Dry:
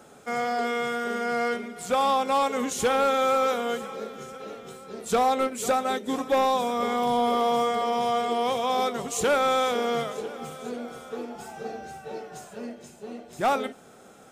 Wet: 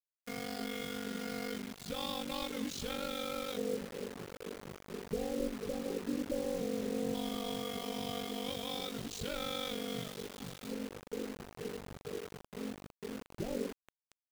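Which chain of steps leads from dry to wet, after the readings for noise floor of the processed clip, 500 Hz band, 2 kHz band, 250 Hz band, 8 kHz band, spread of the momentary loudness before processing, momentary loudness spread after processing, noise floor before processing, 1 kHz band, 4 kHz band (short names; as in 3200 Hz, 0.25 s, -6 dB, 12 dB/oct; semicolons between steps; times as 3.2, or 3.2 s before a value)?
under -85 dBFS, -13.0 dB, -13.5 dB, -6.5 dB, -11.0 dB, 16 LU, 9 LU, -51 dBFS, -22.0 dB, -7.0 dB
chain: passive tone stack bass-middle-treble 10-0-1; limiter -42.5 dBFS, peak gain reduction 8.5 dB; LFO low-pass square 0.14 Hz 470–4300 Hz; ring modulator 24 Hz; thinning echo 0.45 s, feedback 34%, high-pass 200 Hz, level -21.5 dB; bit-crush 10-bit; gain +14.5 dB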